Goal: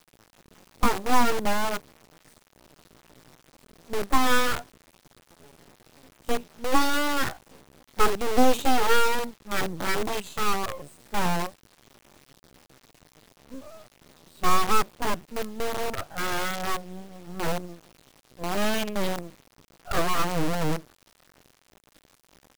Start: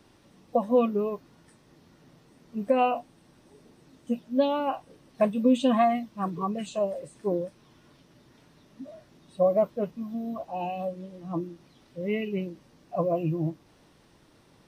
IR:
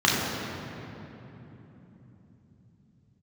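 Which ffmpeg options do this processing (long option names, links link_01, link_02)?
-af "atempo=0.65,acrusher=bits=6:dc=4:mix=0:aa=0.000001,aeval=exprs='abs(val(0))':channel_layout=same,volume=4dB"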